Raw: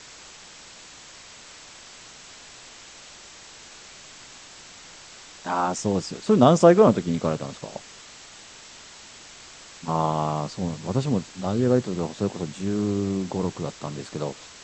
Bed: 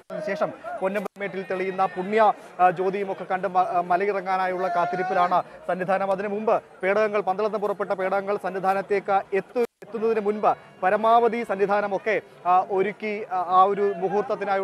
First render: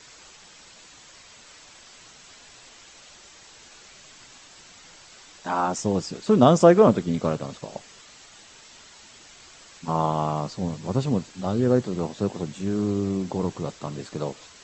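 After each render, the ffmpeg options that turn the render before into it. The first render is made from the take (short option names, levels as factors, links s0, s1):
-af "afftdn=nr=6:nf=-46"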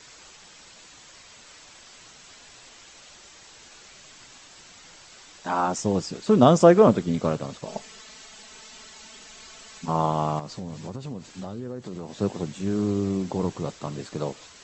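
-filter_complex "[0:a]asettb=1/sr,asplit=3[s0][s1][s2];[s0]atrim=end=7.664[s3];[s1]atrim=start=7.66:end=9.86,asetpts=PTS-STARTPTS,afade=t=in:d=0.004:c=qsin,afade=t=out:st=2.196:d=0.004:c=qsin,aecho=1:1:4.6:0.97,atrim=end_sample=97020[s4];[s2]atrim=start=9.856[s5];[s3][s4]acrossfade=d=0.004:c1=hsin:c2=qsin[s6];[s6][s5]acrossfade=d=0.004:c1=qsin:c2=hsin,asettb=1/sr,asplit=3[s7][s8][s9];[s7]atrim=end=10.394[s10];[s8]atrim=start=10.39:end=12.19,asetpts=PTS-STARTPTS,afade=t=in:d=0.004:c=qsin,afade=t=out:st=1.796:d=0.004:c=qsin,acompressor=threshold=0.0282:ratio=6:attack=3.2:release=140:knee=1:detection=peak[s11];[s9]atrim=start=12.186[s12];[s10][s11]acrossfade=d=0.004:c1=hsin:c2=qsin[s13];[s13][s12]acrossfade=d=0.004:c1=qsin:c2=hsin"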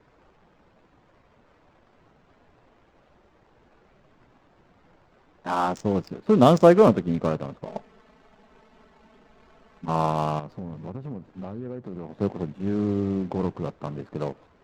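-af "adynamicsmooth=sensitivity=5:basefreq=710"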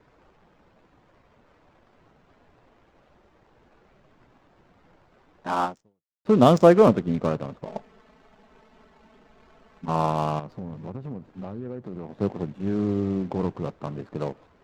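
-filter_complex "[0:a]asplit=2[s0][s1];[s0]atrim=end=6.25,asetpts=PTS-STARTPTS,afade=t=out:st=5.64:d=0.61:c=exp[s2];[s1]atrim=start=6.25,asetpts=PTS-STARTPTS,afade=t=in:d=0.004:c=hsin[s3];[s2][s3]concat=n=2:v=0:a=1"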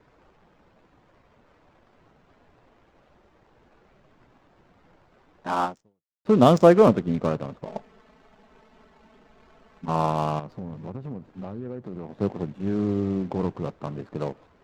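-af anull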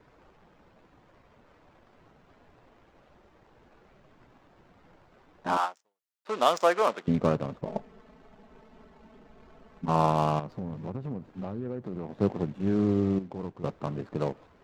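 -filter_complex "[0:a]asettb=1/sr,asplit=3[s0][s1][s2];[s0]atrim=end=5.574[s3];[s1]atrim=start=5.57:end=7.08,asetpts=PTS-STARTPTS,afade=t=in:d=0.004:c=qsin,afade=t=out:st=1.506:d=0.004:c=qsin,highpass=870[s4];[s2]atrim=start=7.076[s5];[s3][s4]acrossfade=d=0.004:c1=hsin:c2=qsin[s6];[s6][s5]acrossfade=d=0.004:c1=qsin:c2=hsin,asettb=1/sr,asplit=3[s7][s8][s9];[s7]atrim=end=7.614[s10];[s8]atrim=start=7.61:end=9.87,asetpts=PTS-STARTPTS,afade=t=in:d=0.004:c=qsin,afade=t=out:st=2.256:d=0.004:c=qsin,tiltshelf=f=730:g=3.5[s11];[s9]atrim=start=9.866[s12];[s10][s11]acrossfade=d=0.004:c1=hsin:c2=qsin[s13];[s13][s12]acrossfade=d=0.004:c1=qsin:c2=hsin,asplit=3[s14][s15][s16];[s14]atrim=end=13.192[s17];[s15]atrim=start=13.188:end=13.642,asetpts=PTS-STARTPTS,volume=0.316[s18];[s16]atrim=start=13.638[s19];[s17][s18]acrossfade=d=0.004:c1=hsin:c2=hsin[s20];[s20][s19]acrossfade=d=0.004:c1=hsin:c2=hsin"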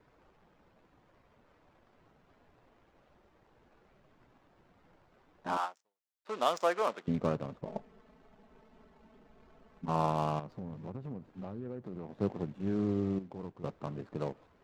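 -af "volume=0.473"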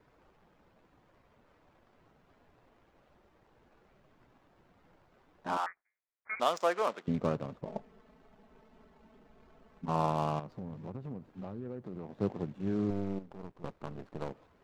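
-filter_complex "[0:a]asettb=1/sr,asplit=3[s0][s1][s2];[s0]atrim=end=5.664[s3];[s1]atrim=start=5.66:end=6.4,asetpts=PTS-STARTPTS,afade=t=in:d=0.004:c=qsin,afade=t=out:st=0.736:d=0.004:c=qsin,lowpass=f=2200:t=q:w=0.5098,lowpass=f=2200:t=q:w=0.6013,lowpass=f=2200:t=q:w=0.9,lowpass=f=2200:t=q:w=2.563,afreqshift=-2600[s4];[s2]atrim=start=6.396[s5];[s3][s4]acrossfade=d=0.004:c1=hsin:c2=qsin[s6];[s6][s5]acrossfade=d=0.004:c1=qsin:c2=hsin,asettb=1/sr,asplit=3[s7][s8][s9];[s7]atrim=end=12.904[s10];[s8]atrim=start=12.9:end=14.31,asetpts=PTS-STARTPTS,afade=t=in:d=0.004:c=qsin,afade=t=out:st=1.406:d=0.004:c=qsin,aeval=exprs='if(lt(val(0),0),0.251*val(0),val(0))':c=same[s11];[s9]atrim=start=14.306[s12];[s10][s11]acrossfade=d=0.004:c1=hsin:c2=qsin[s13];[s13][s12]acrossfade=d=0.004:c1=qsin:c2=hsin"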